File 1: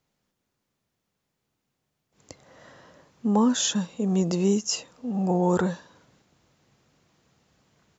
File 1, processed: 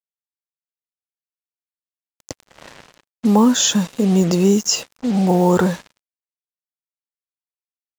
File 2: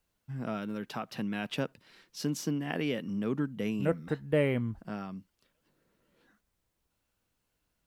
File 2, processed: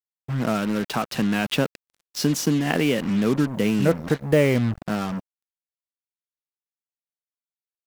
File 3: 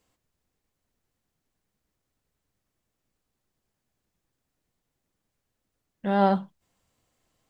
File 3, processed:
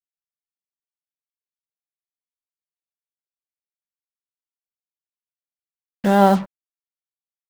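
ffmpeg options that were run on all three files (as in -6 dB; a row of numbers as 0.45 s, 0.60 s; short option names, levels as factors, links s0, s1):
-filter_complex "[0:a]asplit=2[s0][s1];[s1]acompressor=threshold=0.0282:ratio=6,volume=1.41[s2];[s0][s2]amix=inputs=2:normalize=0,acrusher=bits=5:mix=0:aa=0.5,volume=1.78"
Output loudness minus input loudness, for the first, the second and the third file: +8.5 LU, +10.5 LU, +7.5 LU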